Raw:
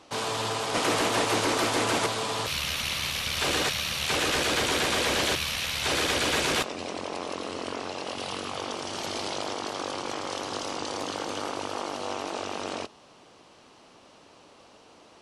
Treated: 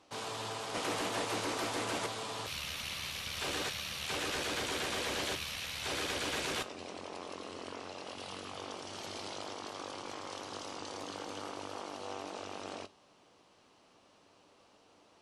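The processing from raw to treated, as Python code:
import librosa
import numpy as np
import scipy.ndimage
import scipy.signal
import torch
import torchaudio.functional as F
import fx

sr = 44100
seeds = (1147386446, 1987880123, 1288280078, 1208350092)

y = fx.comb_fb(x, sr, f0_hz=97.0, decay_s=0.22, harmonics='all', damping=0.0, mix_pct=50)
y = y * 10.0 ** (-6.5 / 20.0)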